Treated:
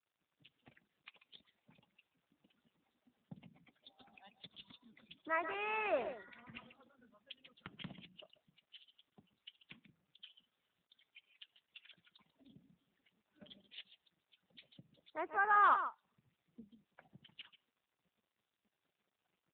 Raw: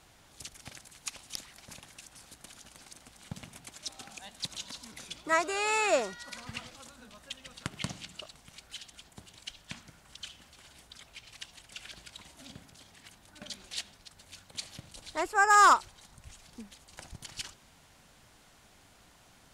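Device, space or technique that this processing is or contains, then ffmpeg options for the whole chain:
mobile call with aggressive noise cancelling: -af "highpass=f=140:w=0.5412,highpass=f=140:w=1.3066,aecho=1:1:139:0.335,afftdn=nr=31:nf=-46,volume=-8.5dB" -ar 8000 -c:a libopencore_amrnb -b:a 7950

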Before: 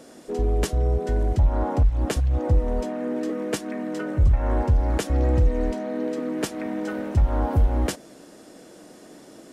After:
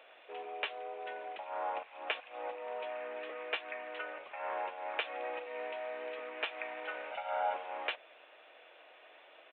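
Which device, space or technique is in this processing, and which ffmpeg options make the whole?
musical greeting card: -filter_complex "[0:a]aresample=8000,aresample=44100,highpass=f=620:w=0.5412,highpass=f=620:w=1.3066,equalizer=f=2.5k:t=o:w=0.45:g=11.5,asettb=1/sr,asplit=3[a][b][c];[a]atrim=end=7.114[d];[b]atrim=start=7.11:end=7.54,asetpts=PTS-STARTPTS,afade=t=in:d=0.004:c=qsin,afade=t=out:st=0.426:d=0.004:c=qsin,aecho=1:1:1.4:0.89,atrim=end_sample=18963[e];[c]atrim=start=7.536[f];[d][e]acrossfade=d=0.004:c1=hsin:c2=qsin[g];[g][f]acrossfade=d=0.004:c1=qsin:c2=hsin,volume=-5.5dB"

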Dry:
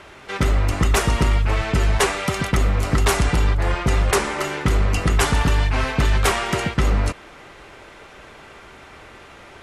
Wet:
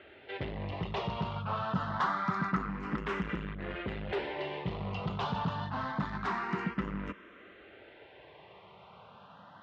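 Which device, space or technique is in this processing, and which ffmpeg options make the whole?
barber-pole phaser into a guitar amplifier: -filter_complex "[0:a]asplit=2[a][b];[b]afreqshift=0.26[c];[a][c]amix=inputs=2:normalize=1,asoftclip=type=tanh:threshold=-19.5dB,highpass=110,equalizer=f=190:t=q:w=4:g=9,equalizer=f=1k:t=q:w=4:g=4,equalizer=f=2.3k:t=q:w=4:g=-4,lowpass=f=3.6k:w=0.5412,lowpass=f=3.6k:w=1.3066,asettb=1/sr,asplit=3[d][e][f];[d]atrim=end=1.364[g];[e]atrim=start=1.36:end=2.7,asetpts=PTS-STARTPTS,afade=t=in:d=0.004:c=qsin,afade=t=out:st=1.336:d=0.004:c=qsin,equalizer=f=1.3k:t=o:w=0.51:g=8[h];[f]atrim=start=2.696[i];[g][h]acrossfade=d=0.004:c1=hsin:c2=qsin[j];[j][i]acrossfade=d=0.004:c1=qsin:c2=hsin,volume=-8dB"

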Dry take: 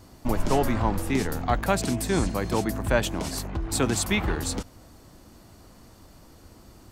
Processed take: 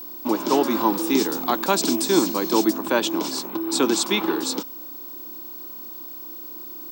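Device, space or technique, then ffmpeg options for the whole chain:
old television with a line whistle: -filter_complex "[0:a]highpass=f=230:w=0.5412,highpass=f=230:w=1.3066,equalizer=f=330:t=q:w=4:g=9,equalizer=f=670:t=q:w=4:g=-6,equalizer=f=990:t=q:w=4:g=6,equalizer=f=1.9k:t=q:w=4:g=-7,equalizer=f=3.7k:t=q:w=4:g=6,equalizer=f=5.3k:t=q:w=4:g=5,lowpass=f=8.7k:w=0.5412,lowpass=f=8.7k:w=1.3066,aeval=exprs='val(0)+0.0141*sin(2*PI*15734*n/s)':c=same,asettb=1/sr,asplit=3[a][b][c];[a]atrim=end=0.714[d];[b]atrim=start=0.71:end=2.73,asetpts=PTS-STARTPTS,afade=t=in:d=0.004:c=qsin,afade=t=out:st=2.016:d=0.004:c=qsin,bass=f=250:g=2,treble=f=4k:g=5[e];[c]atrim=start=2.726[f];[d][e]acrossfade=d=0.004:c1=hsin:c2=qsin[g];[g][f]acrossfade=d=0.004:c1=qsin:c2=hsin,volume=3dB"

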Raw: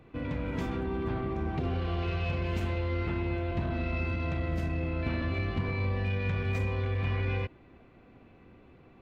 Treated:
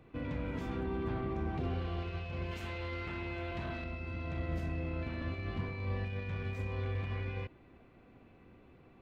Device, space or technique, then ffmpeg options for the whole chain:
de-esser from a sidechain: -filter_complex "[0:a]asplit=2[a][b];[b]highpass=4.1k,apad=whole_len=397380[c];[a][c]sidechaincompress=threshold=-54dB:ratio=8:attack=2.6:release=25,asettb=1/sr,asplit=3[d][e][f];[d]atrim=end=2.514[g];[e]atrim=start=2.51:end=3.84,asetpts=PTS-STARTPTS,afade=t=in:d=0.004:c=qsin,afade=t=out:st=1.326:d=0.004:c=qsin,tiltshelf=f=740:g=-5[h];[f]atrim=start=3.836[i];[g][h]acrossfade=d=0.004:c1=hsin:c2=qsin[j];[j][i]acrossfade=d=0.004:c1=qsin:c2=hsin,volume=-3.5dB"

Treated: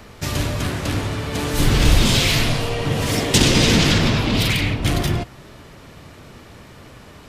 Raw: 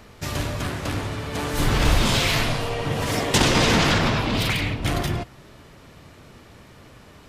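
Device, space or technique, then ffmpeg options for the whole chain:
one-band saturation: -filter_complex "[0:a]acrossover=split=490|2100[a][b][c];[b]asoftclip=type=tanh:threshold=-34.5dB[d];[a][d][c]amix=inputs=3:normalize=0,volume=5dB"

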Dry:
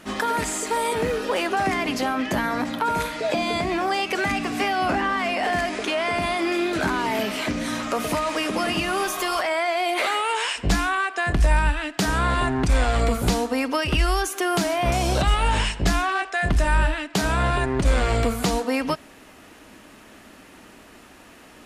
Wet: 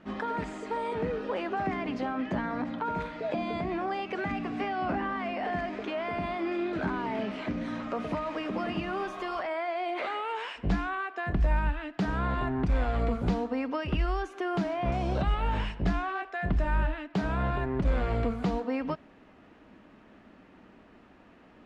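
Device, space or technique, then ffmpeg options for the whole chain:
phone in a pocket: -af "lowpass=3.8k,equalizer=f=190:t=o:w=0.62:g=4,highshelf=f=2k:g=-9.5,volume=-7dB"

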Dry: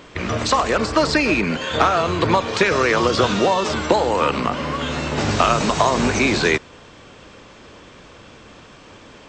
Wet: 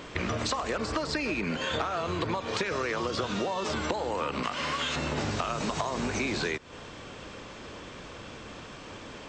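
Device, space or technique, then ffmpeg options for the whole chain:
serial compression, peaks first: -filter_complex "[0:a]asettb=1/sr,asplit=3[a][b][c];[a]atrim=end=4.434[d];[b]atrim=start=4.43:end=4.96,asetpts=PTS-STARTPTS,afade=t=in:d=0.004:c=qsin,afade=t=out:st=0.526:d=0.004:c=qsin,tiltshelf=f=970:g=-7.5[e];[c]atrim=start=4.956[f];[d][e]acrossfade=d=0.004:c1=hsin:c2=qsin[g];[g][f]acrossfade=d=0.004:c1=qsin:c2=hsin,acompressor=threshold=-24dB:ratio=6,acompressor=threshold=-33dB:ratio=1.5"

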